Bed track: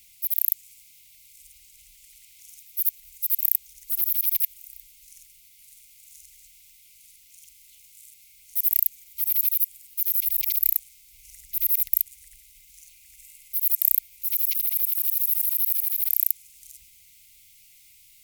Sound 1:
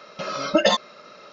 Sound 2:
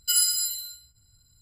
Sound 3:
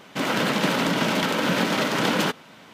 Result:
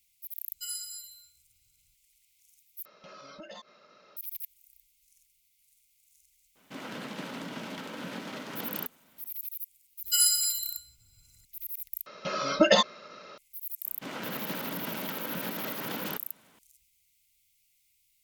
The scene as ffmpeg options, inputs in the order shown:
-filter_complex "[2:a]asplit=2[a][b];[1:a]asplit=2[c][d];[3:a]asplit=2[e][f];[0:a]volume=-16dB[g];[c]acompressor=threshold=-32dB:ratio=3:attack=0.21:release=70:knee=1:detection=rms[h];[e]equalizer=f=250:w=5.2:g=4[i];[d]equalizer=f=760:t=o:w=0.4:g=-3[j];[g]asplit=3[k][l][m];[k]atrim=end=2.854[n];[h]atrim=end=1.32,asetpts=PTS-STARTPTS,volume=-13dB[o];[l]atrim=start=4.166:end=12.064[p];[j]atrim=end=1.32,asetpts=PTS-STARTPTS,volume=-2dB[q];[m]atrim=start=13.376[r];[a]atrim=end=1.41,asetpts=PTS-STARTPTS,volume=-15.5dB,afade=t=in:d=0.004:c=hsin,afade=t=out:st=1.406:d=0.004:c=hsin,adelay=530[s];[i]atrim=end=2.73,asetpts=PTS-STARTPTS,volume=-17.5dB,afade=t=in:d=0.02,afade=t=out:st=2.71:d=0.02,adelay=6550[t];[b]atrim=end=1.41,asetpts=PTS-STARTPTS,volume=-1.5dB,afade=t=in:d=0.004:c=hsin,afade=t=out:st=1.406:d=0.004:c=hsin,adelay=10040[u];[f]atrim=end=2.73,asetpts=PTS-STARTPTS,volume=-14.5dB,afade=t=in:d=0.004:c=hsin,afade=t=out:st=2.726:d=0.004:c=hsin,adelay=13860[v];[n][o]acrossfade=d=0.004:c1=hsin:c2=hsin[w];[w][p]acrossfade=d=0.004:c1=hsin:c2=hsin[x];[x][q]acrossfade=d=0.004:c1=hsin:c2=hsin[y];[y][r]acrossfade=d=0.004:c1=hsin:c2=hsin[z];[z][s][t][u][v]amix=inputs=5:normalize=0"

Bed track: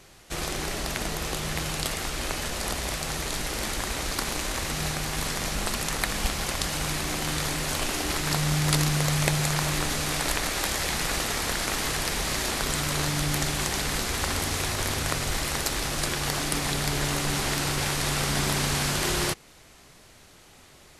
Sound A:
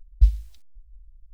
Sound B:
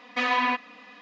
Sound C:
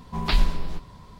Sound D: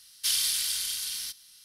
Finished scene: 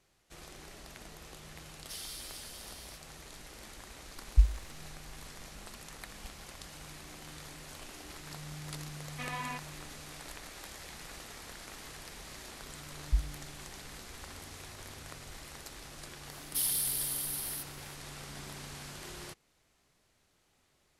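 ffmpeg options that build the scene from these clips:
-filter_complex "[4:a]asplit=2[a][b];[1:a]asplit=2[c][d];[0:a]volume=-19.5dB[e];[a]asplit=2[f][g];[g]adelay=9,afreqshift=-2.7[h];[f][h]amix=inputs=2:normalize=1[i];[b]aexciter=amount=3.2:drive=9:freq=9.3k[j];[i]atrim=end=1.64,asetpts=PTS-STARTPTS,volume=-14.5dB,afade=t=in:d=0.004:c=hsin,afade=t=out:st=1.636:d=0.004:c=hsin,adelay=1650[k];[c]atrim=end=1.33,asetpts=PTS-STARTPTS,volume=-6dB,afade=t=in:d=0.004:c=hsin,afade=t=out:st=1.326:d=0.004:c=hsin,adelay=4160[l];[2:a]atrim=end=1.01,asetpts=PTS-STARTPTS,volume=-15.5dB,afade=t=in:d=0.004:c=hsin,afade=t=out:st=1.006:d=0.004:c=hsin,adelay=9020[m];[d]atrim=end=1.33,asetpts=PTS-STARTPTS,volume=-12.5dB,afade=t=in:d=0.004:c=hsin,afade=t=out:st=1.326:d=0.004:c=hsin,adelay=12910[n];[j]atrim=end=1.64,asetpts=PTS-STARTPTS,volume=-13dB,afade=t=in:d=0.004:c=hsin,afade=t=out:st=1.636:d=0.004:c=hsin,adelay=16310[o];[e][k][l][m][n][o]amix=inputs=6:normalize=0"

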